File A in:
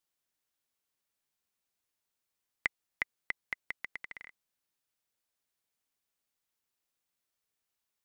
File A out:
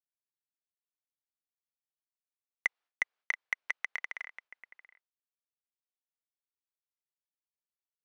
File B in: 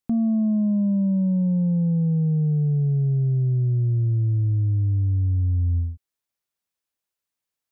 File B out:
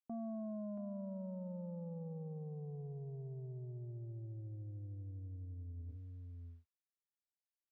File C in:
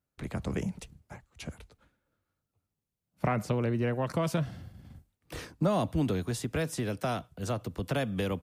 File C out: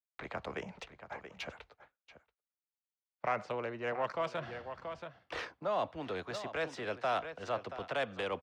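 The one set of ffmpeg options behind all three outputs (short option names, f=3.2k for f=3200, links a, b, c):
-filter_complex "[0:a]aecho=1:1:680:0.188,areverse,acompressor=threshold=-32dB:ratio=8,areverse,acrossover=split=490 7600:gain=0.0891 1 0.0891[a][b][c];[a][b][c]amix=inputs=3:normalize=0,agate=range=-33dB:threshold=-60dB:ratio=3:detection=peak,adynamicsmooth=sensitivity=5:basefreq=3.1k,volume=7dB"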